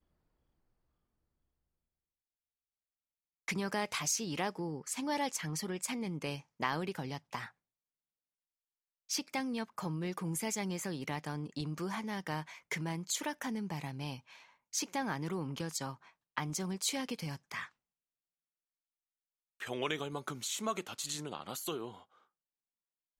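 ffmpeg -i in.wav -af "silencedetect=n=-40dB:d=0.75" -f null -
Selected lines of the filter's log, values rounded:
silence_start: 0.00
silence_end: 3.48 | silence_duration: 3.48
silence_start: 7.46
silence_end: 9.10 | silence_duration: 1.64
silence_start: 17.65
silence_end: 19.61 | silence_duration: 1.95
silence_start: 21.89
silence_end: 23.19 | silence_duration: 1.30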